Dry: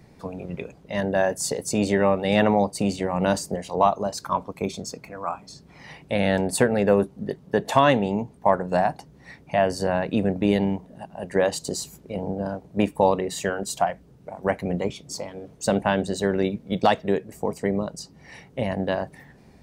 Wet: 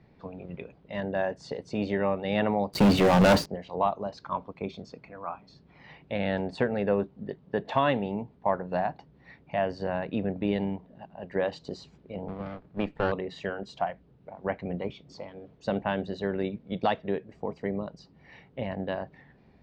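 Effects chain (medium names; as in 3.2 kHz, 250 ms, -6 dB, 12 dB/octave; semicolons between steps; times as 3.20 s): 12.28–13.12 s: comb filter that takes the minimum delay 0.42 ms; low-pass 4 kHz 24 dB/octave; 2.73–3.46 s: waveshaping leveller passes 5; trim -7 dB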